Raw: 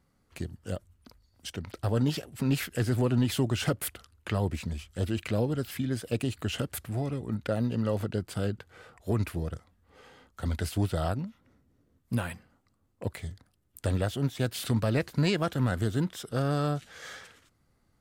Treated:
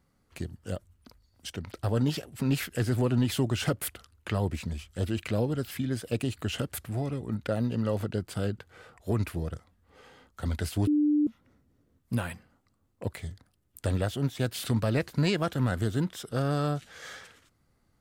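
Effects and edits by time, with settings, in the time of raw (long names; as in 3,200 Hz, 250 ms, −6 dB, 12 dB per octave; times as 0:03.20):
0:10.87–0:11.27: beep over 297 Hz −20.5 dBFS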